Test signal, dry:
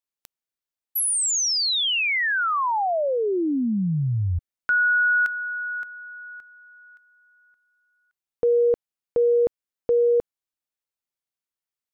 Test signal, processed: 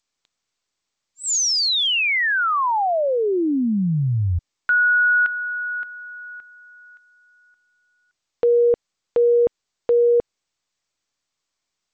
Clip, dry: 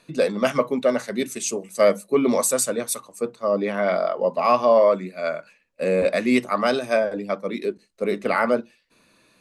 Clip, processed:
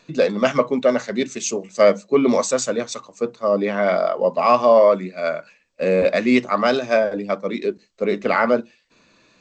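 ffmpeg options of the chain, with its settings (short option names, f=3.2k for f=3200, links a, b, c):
-af "volume=3dB" -ar 16000 -c:a g722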